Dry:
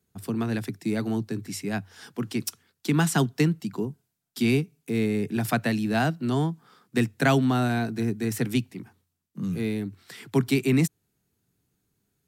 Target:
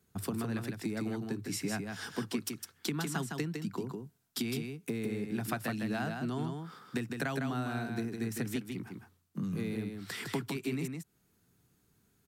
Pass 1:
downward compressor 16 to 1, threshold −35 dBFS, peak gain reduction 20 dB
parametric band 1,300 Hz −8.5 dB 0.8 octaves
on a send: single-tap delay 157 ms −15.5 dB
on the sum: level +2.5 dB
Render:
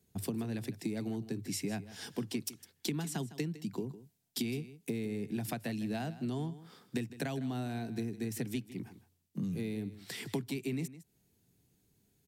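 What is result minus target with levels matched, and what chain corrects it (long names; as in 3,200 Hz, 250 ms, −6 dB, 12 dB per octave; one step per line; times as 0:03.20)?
echo-to-direct −10.5 dB; 1,000 Hz band −4.0 dB
downward compressor 16 to 1, threshold −35 dBFS, peak gain reduction 20 dB
parametric band 1,300 Hz +3.5 dB 0.8 octaves
on a send: single-tap delay 157 ms −5 dB
on the sum: level +2.5 dB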